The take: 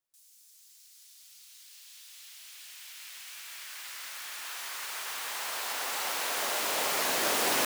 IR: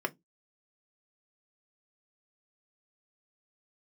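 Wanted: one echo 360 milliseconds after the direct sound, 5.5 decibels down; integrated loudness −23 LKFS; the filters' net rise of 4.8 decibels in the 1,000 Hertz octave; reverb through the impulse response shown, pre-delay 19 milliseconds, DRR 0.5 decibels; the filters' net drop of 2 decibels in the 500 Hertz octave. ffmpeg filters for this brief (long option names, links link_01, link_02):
-filter_complex "[0:a]equalizer=frequency=500:width_type=o:gain=-5.5,equalizer=frequency=1000:width_type=o:gain=7.5,aecho=1:1:360:0.531,asplit=2[link_01][link_02];[1:a]atrim=start_sample=2205,adelay=19[link_03];[link_02][link_03]afir=irnorm=-1:irlink=0,volume=-6.5dB[link_04];[link_01][link_04]amix=inputs=2:normalize=0,volume=4dB"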